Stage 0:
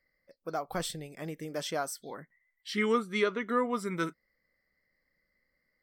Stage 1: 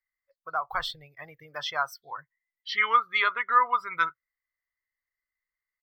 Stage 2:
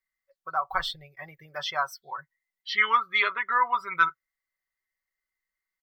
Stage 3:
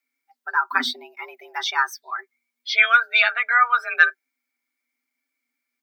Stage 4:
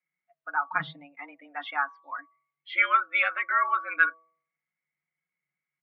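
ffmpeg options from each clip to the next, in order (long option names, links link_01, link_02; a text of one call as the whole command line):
ffmpeg -i in.wav -af "afftdn=noise_reduction=22:noise_floor=-42,firequalizer=gain_entry='entry(120,0);entry(190,-29);entry(480,-13);entry(1000,9);entry(1800,6);entry(4600,3);entry(8300,-20);entry(14000,12)':delay=0.05:min_phase=1,volume=3.5dB" out.wav
ffmpeg -i in.wav -af "aecho=1:1:5.3:0.64" out.wav
ffmpeg -i in.wav -af "afreqshift=240,volume=6.5dB" out.wav
ffmpeg -i in.wav -af "highpass=frequency=190:width_type=q:width=0.5412,highpass=frequency=190:width_type=q:width=1.307,lowpass=frequency=3000:width_type=q:width=0.5176,lowpass=frequency=3000:width_type=q:width=0.7071,lowpass=frequency=3000:width_type=q:width=1.932,afreqshift=-98,bandreject=frequency=162.1:width_type=h:width=4,bandreject=frequency=324.2:width_type=h:width=4,bandreject=frequency=486.3:width_type=h:width=4,bandreject=frequency=648.4:width_type=h:width=4,bandreject=frequency=810.5:width_type=h:width=4,bandreject=frequency=972.6:width_type=h:width=4,bandreject=frequency=1134.7:width_type=h:width=4,volume=-6.5dB" out.wav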